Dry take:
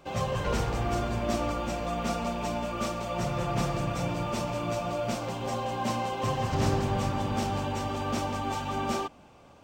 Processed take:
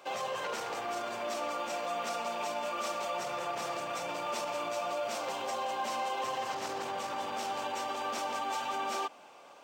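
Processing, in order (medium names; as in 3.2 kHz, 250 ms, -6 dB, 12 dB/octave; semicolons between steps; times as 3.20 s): in parallel at -5.5 dB: hard clipper -24 dBFS, distortion -17 dB; on the sum: peak limiter -24 dBFS, peak gain reduction 10.5 dB; high-pass 540 Hz 12 dB/octave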